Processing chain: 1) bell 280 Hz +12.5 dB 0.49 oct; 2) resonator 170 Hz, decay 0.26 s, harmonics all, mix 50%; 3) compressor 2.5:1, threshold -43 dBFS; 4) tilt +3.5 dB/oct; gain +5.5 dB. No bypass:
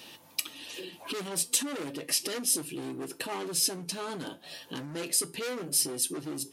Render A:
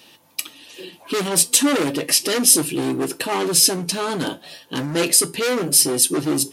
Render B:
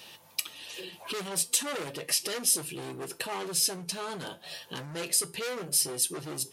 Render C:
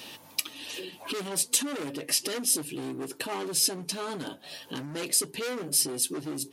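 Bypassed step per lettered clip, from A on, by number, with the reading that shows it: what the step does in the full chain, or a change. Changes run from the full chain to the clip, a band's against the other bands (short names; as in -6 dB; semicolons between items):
3, mean gain reduction 12.5 dB; 1, 250 Hz band -5.0 dB; 2, loudness change +2.0 LU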